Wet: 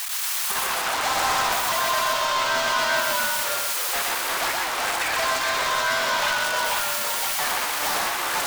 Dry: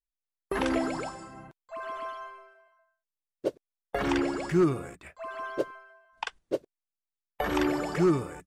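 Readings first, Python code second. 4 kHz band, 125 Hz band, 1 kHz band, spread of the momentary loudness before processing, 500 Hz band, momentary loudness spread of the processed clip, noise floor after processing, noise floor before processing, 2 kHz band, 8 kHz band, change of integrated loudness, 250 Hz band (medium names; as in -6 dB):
+20.5 dB, -9.5 dB, +13.5 dB, 17 LU, +1.5 dB, 2 LU, -27 dBFS, under -85 dBFS, +16.0 dB, +24.5 dB, +8.5 dB, -12.0 dB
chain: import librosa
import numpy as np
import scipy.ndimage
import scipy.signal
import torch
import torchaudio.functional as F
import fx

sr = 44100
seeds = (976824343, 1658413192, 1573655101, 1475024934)

p1 = np.sign(x) * np.sqrt(np.mean(np.square(x)))
p2 = scipy.signal.sosfilt(scipy.signal.butter(4, 810.0, 'highpass', fs=sr, output='sos'), p1)
p3 = fx.level_steps(p2, sr, step_db=18)
p4 = p2 + (p3 * librosa.db_to_amplitude(2.0))
p5 = np.clip(p4, -10.0 ** (-31.5 / 20.0), 10.0 ** (-31.5 / 20.0))
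p6 = fx.echo_pitch(p5, sr, ms=118, semitones=-1, count=2, db_per_echo=-3.0)
p7 = p6 + fx.echo_single(p6, sr, ms=123, db=-3.0, dry=0)
y = p7 * librosa.db_to_amplitude(7.5)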